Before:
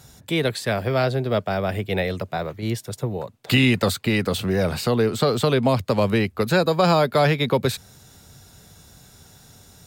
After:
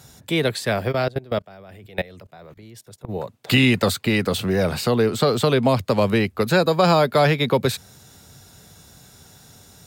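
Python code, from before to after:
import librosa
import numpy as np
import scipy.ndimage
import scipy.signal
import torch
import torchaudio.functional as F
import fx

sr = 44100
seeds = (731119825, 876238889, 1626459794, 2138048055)

y = fx.highpass(x, sr, hz=72.0, slope=6)
y = fx.level_steps(y, sr, step_db=22, at=(0.91, 3.08), fade=0.02)
y = F.gain(torch.from_numpy(y), 1.5).numpy()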